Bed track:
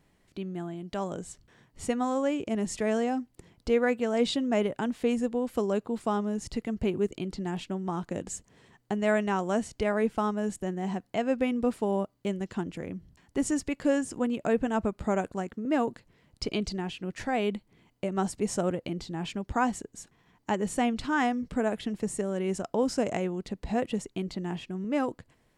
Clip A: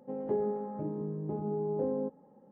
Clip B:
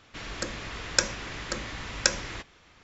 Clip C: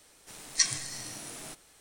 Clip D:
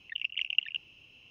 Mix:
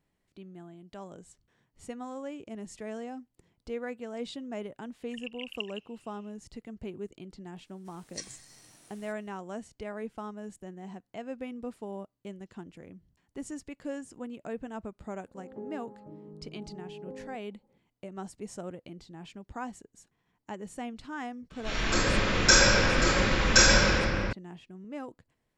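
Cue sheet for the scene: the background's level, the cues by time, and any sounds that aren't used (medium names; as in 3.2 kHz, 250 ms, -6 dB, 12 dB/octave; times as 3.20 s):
bed track -11.5 dB
5.02 s: add D -10 dB
7.58 s: add C -15.5 dB
15.27 s: add A -11.5 dB
21.50 s: add B -10 dB + simulated room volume 91 m³, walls hard, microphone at 3.7 m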